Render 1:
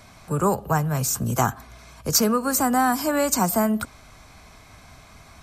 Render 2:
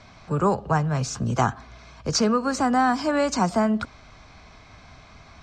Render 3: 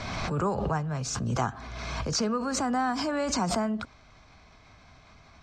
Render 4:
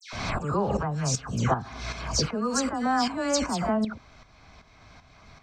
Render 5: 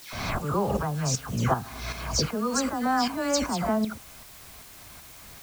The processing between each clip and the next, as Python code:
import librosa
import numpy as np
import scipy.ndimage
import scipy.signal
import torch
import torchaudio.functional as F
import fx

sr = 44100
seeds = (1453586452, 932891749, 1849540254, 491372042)

y1 = scipy.signal.sosfilt(scipy.signal.butter(4, 5600.0, 'lowpass', fs=sr, output='sos'), x)
y2 = fx.pre_swell(y1, sr, db_per_s=26.0)
y2 = F.gain(torch.from_numpy(y2), -7.5).numpy()
y3 = fx.dispersion(y2, sr, late='lows', ms=130.0, hz=2100.0)
y3 = fx.tremolo_shape(y3, sr, shape='saw_up', hz=2.6, depth_pct=65)
y3 = F.gain(torch.from_numpy(y3), 5.0).numpy()
y4 = fx.quant_dither(y3, sr, seeds[0], bits=8, dither='triangular')